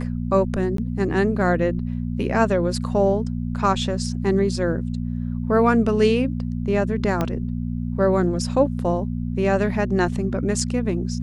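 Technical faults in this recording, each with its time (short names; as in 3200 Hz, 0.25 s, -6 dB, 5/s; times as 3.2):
hum 60 Hz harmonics 4 -26 dBFS
0.77–0.78 gap 13 ms
7.21 pop -10 dBFS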